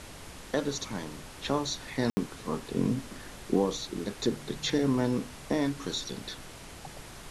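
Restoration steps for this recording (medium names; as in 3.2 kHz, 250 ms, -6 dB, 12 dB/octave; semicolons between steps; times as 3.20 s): room tone fill 2.10–2.17 s; noise reduction 30 dB, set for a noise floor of -46 dBFS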